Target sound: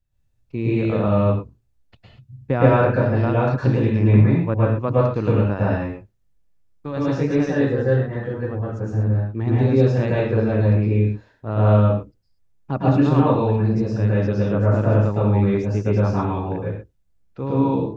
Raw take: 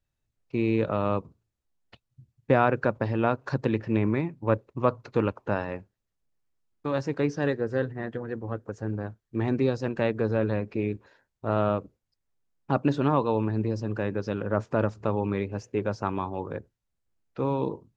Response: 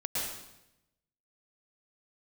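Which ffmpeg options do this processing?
-filter_complex "[0:a]lowshelf=f=170:g=11.5[a];[1:a]atrim=start_sample=2205,afade=t=out:st=0.3:d=0.01,atrim=end_sample=13671[b];[a][b]afir=irnorm=-1:irlink=0,volume=-1.5dB"

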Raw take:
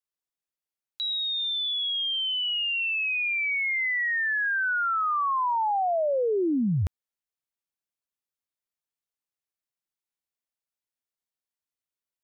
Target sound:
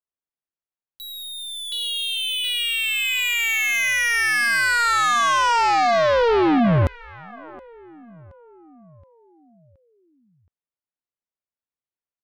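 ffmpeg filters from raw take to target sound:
-af "aecho=1:1:722|1444|2166|2888|3610:0.316|0.149|0.0699|0.0328|0.0154,adynamicsmooth=sensitivity=5:basefreq=2.4k,aeval=exprs='0.126*(cos(1*acos(clip(val(0)/0.126,-1,1)))-cos(1*PI/2))+0.000794*(cos(2*acos(clip(val(0)/0.126,-1,1)))-cos(2*PI/2))+0.0224*(cos(3*acos(clip(val(0)/0.126,-1,1)))-cos(3*PI/2))+0.000891*(cos(6*acos(clip(val(0)/0.126,-1,1)))-cos(6*PI/2))+0.0141*(cos(7*acos(clip(val(0)/0.126,-1,1)))-cos(7*PI/2))':c=same,volume=9dB"

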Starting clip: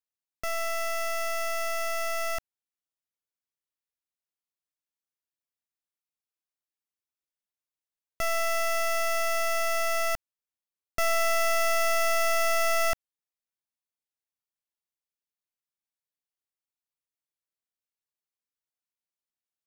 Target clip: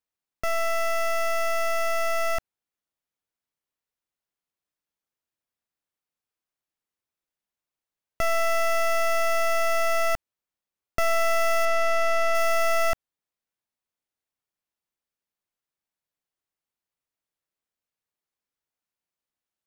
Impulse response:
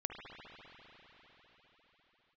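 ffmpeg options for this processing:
-filter_complex "[0:a]asettb=1/sr,asplit=3[a][b][c];[a]atrim=end=11.654[d];[b]atrim=start=11.65:end=12.35,asetpts=PTS-STARTPTS,afade=t=in:d=0.004:c=qsin,afade=t=out:st=0.696:d=0.004:c=qsin,highshelf=f=8k:g=-11.5[e];[c]atrim=start=12.346[f];[d][e]acrossfade=d=0.004:c1=hsin:c2=qsin[g];[g][f]acrossfade=d=0.004:c1=qsin:c2=hsin,acompressor=threshold=-27dB:ratio=6,highshelf=f=2.8k:g=-7,volume=6.5dB"

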